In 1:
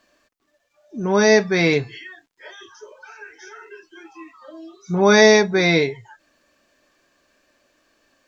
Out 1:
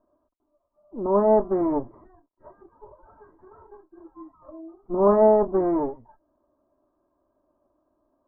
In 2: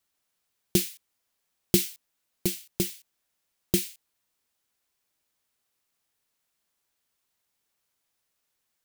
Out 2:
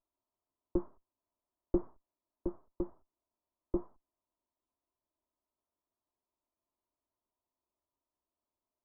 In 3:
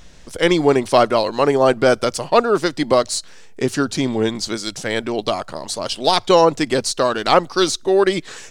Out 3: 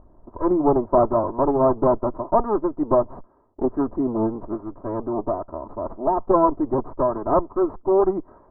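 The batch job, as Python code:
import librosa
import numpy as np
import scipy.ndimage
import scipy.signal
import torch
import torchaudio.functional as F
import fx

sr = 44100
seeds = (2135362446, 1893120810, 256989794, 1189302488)

y = fx.lower_of_two(x, sr, delay_ms=3.1)
y = scipy.signal.sosfilt(scipy.signal.ellip(4, 1.0, 60, 1100.0, 'lowpass', fs=sr, output='sos'), y)
y = y * 10.0 ** (-2.0 / 20.0)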